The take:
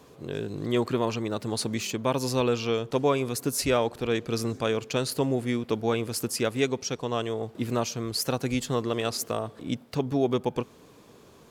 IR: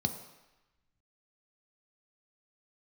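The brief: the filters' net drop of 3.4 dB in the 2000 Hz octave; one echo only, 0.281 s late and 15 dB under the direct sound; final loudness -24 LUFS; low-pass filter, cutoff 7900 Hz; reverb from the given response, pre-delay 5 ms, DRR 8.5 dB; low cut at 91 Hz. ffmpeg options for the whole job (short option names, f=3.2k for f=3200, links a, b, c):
-filter_complex "[0:a]highpass=91,lowpass=7.9k,equalizer=f=2k:t=o:g=-4.5,aecho=1:1:281:0.178,asplit=2[a][b];[1:a]atrim=start_sample=2205,adelay=5[c];[b][c]afir=irnorm=-1:irlink=0,volume=-12.5dB[d];[a][d]amix=inputs=2:normalize=0,volume=4dB"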